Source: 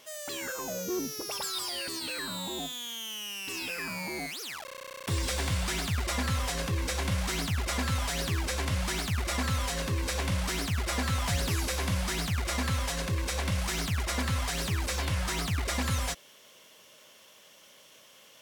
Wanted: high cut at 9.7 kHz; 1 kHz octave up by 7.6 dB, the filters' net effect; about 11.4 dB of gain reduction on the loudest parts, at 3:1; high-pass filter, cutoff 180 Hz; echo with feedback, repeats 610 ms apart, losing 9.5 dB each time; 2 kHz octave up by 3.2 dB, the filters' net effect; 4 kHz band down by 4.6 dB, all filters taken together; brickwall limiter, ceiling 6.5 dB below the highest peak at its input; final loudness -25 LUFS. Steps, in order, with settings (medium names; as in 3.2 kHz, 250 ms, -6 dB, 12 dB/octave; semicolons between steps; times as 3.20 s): high-pass 180 Hz; low-pass 9.7 kHz; peaking EQ 1 kHz +9 dB; peaking EQ 2 kHz +3 dB; peaking EQ 4 kHz -7.5 dB; compression 3:1, threshold -42 dBFS; peak limiter -32.5 dBFS; feedback delay 610 ms, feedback 33%, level -9.5 dB; trim +17 dB